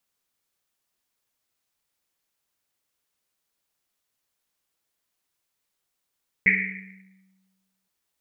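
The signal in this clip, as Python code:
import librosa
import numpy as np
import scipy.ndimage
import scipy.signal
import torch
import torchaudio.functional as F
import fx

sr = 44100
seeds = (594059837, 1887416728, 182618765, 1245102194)

y = fx.risset_drum(sr, seeds[0], length_s=1.42, hz=190.0, decay_s=1.52, noise_hz=2100.0, noise_width_hz=530.0, noise_pct=75)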